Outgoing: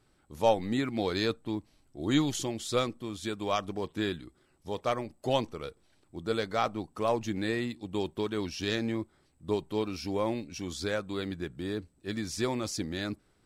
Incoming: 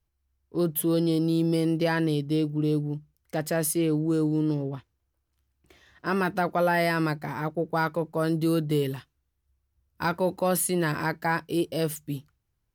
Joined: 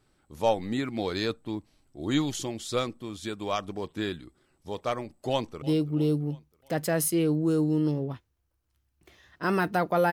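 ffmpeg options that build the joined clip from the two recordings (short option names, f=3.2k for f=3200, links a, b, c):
-filter_complex "[0:a]apad=whole_dur=10.12,atrim=end=10.12,atrim=end=5.622[a];[1:a]atrim=start=2.248:end=6.75[b];[a][b]acrossfade=d=0.004:c1=hsin:c2=hsin,asplit=2[c][d];[d]afade=t=in:st=5.3:d=0.01,afade=t=out:st=5.62:d=0.01,aecho=0:1:330|660|990|1320:0.141254|0.0706269|0.0353134|0.0176567[e];[c][e]amix=inputs=2:normalize=0"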